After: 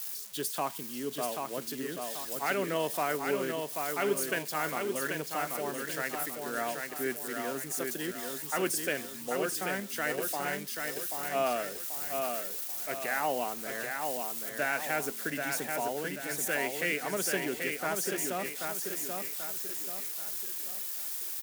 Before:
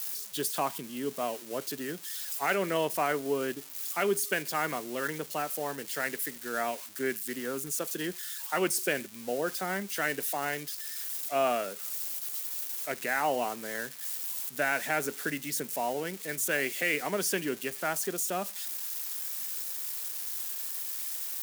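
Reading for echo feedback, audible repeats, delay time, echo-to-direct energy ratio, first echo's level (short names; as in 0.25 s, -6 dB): 43%, 5, 0.785 s, -3.5 dB, -4.5 dB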